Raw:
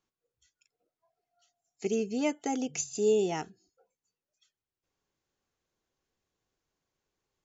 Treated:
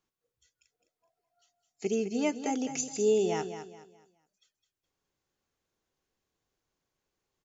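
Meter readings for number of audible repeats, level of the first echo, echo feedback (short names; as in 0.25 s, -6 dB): 3, -10.0 dB, 32%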